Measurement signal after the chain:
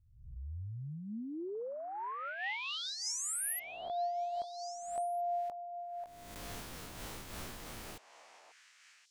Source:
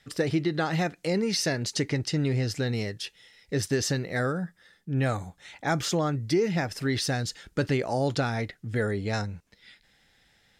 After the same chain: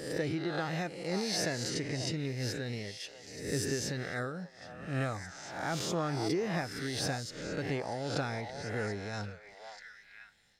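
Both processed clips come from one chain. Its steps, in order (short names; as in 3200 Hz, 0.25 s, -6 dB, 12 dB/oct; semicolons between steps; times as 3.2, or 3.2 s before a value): spectral swells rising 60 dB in 0.79 s; delay with a stepping band-pass 0.539 s, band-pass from 810 Hz, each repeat 1.4 oct, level -6 dB; noise-modulated level, depth 60%; gain -6.5 dB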